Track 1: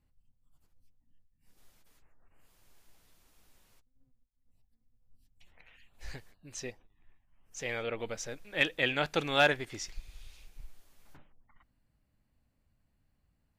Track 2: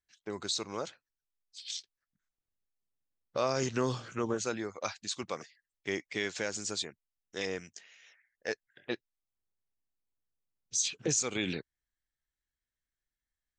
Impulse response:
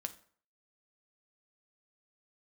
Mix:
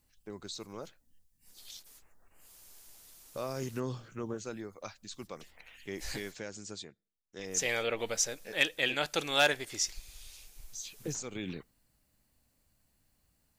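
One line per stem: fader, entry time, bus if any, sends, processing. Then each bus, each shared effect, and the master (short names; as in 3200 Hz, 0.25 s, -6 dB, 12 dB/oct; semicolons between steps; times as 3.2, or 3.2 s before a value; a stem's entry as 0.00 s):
-0.5 dB, 0.00 s, muted 6.39–7.39, send -14 dB, tone controls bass -5 dB, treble +12 dB
-13.5 dB, 0.00 s, send -18.5 dB, low shelf 400 Hz +8 dB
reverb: on, RT60 0.50 s, pre-delay 5 ms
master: vocal rider within 3 dB 0.5 s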